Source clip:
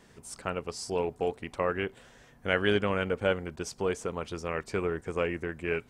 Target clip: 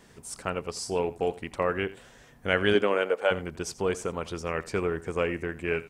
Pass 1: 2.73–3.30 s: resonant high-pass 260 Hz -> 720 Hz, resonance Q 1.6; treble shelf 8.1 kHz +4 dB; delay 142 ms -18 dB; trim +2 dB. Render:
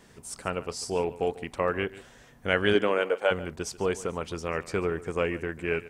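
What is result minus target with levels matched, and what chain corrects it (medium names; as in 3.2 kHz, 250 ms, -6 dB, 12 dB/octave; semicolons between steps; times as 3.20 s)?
echo 57 ms late
2.73–3.30 s: resonant high-pass 260 Hz -> 720 Hz, resonance Q 1.6; treble shelf 8.1 kHz +4 dB; delay 85 ms -18 dB; trim +2 dB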